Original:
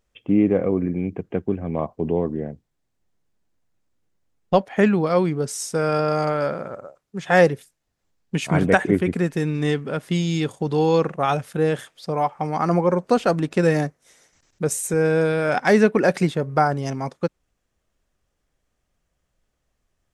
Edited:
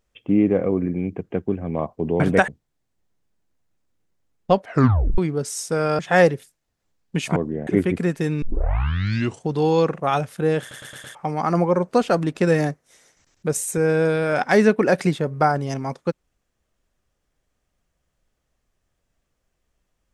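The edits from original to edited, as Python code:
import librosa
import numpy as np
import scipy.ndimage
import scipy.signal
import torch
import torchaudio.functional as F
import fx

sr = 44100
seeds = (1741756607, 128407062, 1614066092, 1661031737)

y = fx.edit(x, sr, fx.swap(start_s=2.2, length_s=0.31, other_s=8.55, other_length_s=0.28),
    fx.tape_stop(start_s=4.67, length_s=0.54),
    fx.cut(start_s=6.02, length_s=1.16),
    fx.tape_start(start_s=9.58, length_s=1.06),
    fx.stutter_over(start_s=11.76, slice_s=0.11, count=5), tone=tone)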